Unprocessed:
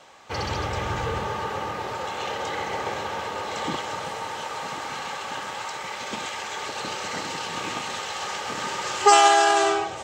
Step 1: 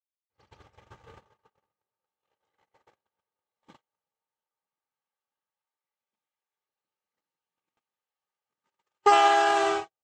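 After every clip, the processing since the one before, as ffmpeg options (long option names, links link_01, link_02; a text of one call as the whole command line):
ffmpeg -i in.wav -filter_complex "[0:a]acrossover=split=3600[link_01][link_02];[link_02]acompressor=threshold=-37dB:ratio=4:attack=1:release=60[link_03];[link_01][link_03]amix=inputs=2:normalize=0,agate=range=-59dB:threshold=-23dB:ratio=16:detection=peak,volume=-3.5dB" out.wav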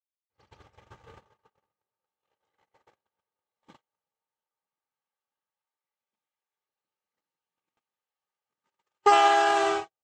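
ffmpeg -i in.wav -af anull out.wav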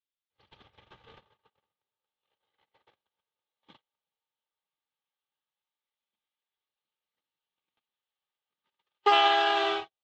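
ffmpeg -i in.wav -filter_complex "[0:a]acrossover=split=160|950|1800[link_01][link_02][link_03][link_04];[link_01]aeval=exprs='(mod(447*val(0)+1,2)-1)/447':channel_layout=same[link_05];[link_05][link_02][link_03][link_04]amix=inputs=4:normalize=0,lowpass=frequency=3500:width_type=q:width=3.5,volume=-4dB" out.wav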